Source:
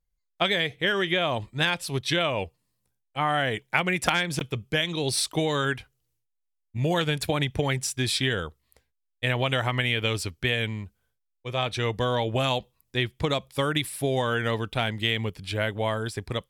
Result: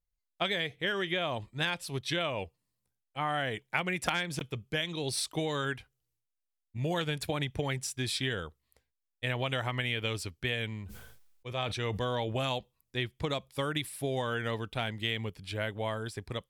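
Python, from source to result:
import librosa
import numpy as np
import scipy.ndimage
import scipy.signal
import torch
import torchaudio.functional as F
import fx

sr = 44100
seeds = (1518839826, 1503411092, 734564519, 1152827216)

y = fx.sustainer(x, sr, db_per_s=42.0, at=(10.72, 12.44))
y = y * librosa.db_to_amplitude(-7.0)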